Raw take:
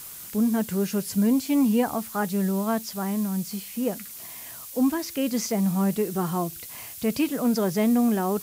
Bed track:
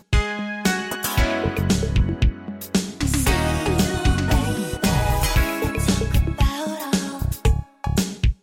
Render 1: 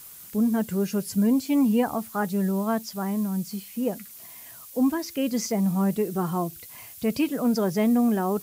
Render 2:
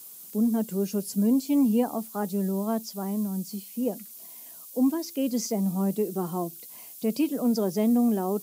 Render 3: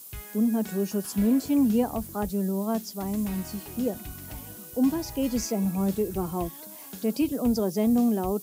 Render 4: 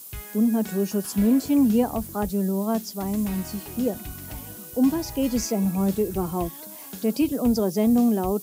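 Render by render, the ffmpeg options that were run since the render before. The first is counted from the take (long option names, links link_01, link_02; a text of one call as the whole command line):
ffmpeg -i in.wav -af "afftdn=noise_reduction=6:noise_floor=-40" out.wav
ffmpeg -i in.wav -af "highpass=frequency=190:width=0.5412,highpass=frequency=190:width=1.3066,equalizer=frequency=1700:width=0.89:gain=-11.5" out.wav
ffmpeg -i in.wav -i bed.wav -filter_complex "[1:a]volume=-22.5dB[link_01];[0:a][link_01]amix=inputs=2:normalize=0" out.wav
ffmpeg -i in.wav -af "volume=3dB" out.wav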